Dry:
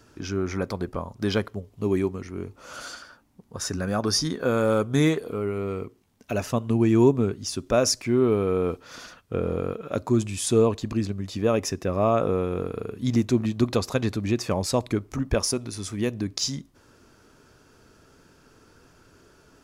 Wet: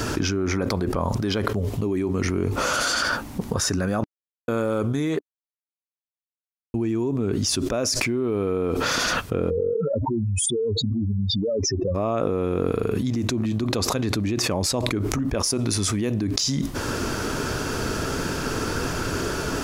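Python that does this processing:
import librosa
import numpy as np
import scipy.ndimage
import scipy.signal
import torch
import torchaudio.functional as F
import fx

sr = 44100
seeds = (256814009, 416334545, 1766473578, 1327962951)

y = fx.spec_expand(x, sr, power=3.9, at=(9.49, 11.94), fade=0.02)
y = fx.edit(y, sr, fx.silence(start_s=4.04, length_s=0.44),
    fx.silence(start_s=5.19, length_s=1.55), tone=tone)
y = fx.dynamic_eq(y, sr, hz=300.0, q=2.6, threshold_db=-34.0, ratio=4.0, max_db=4)
y = fx.env_flatten(y, sr, amount_pct=100)
y = y * librosa.db_to_amplitude(-11.0)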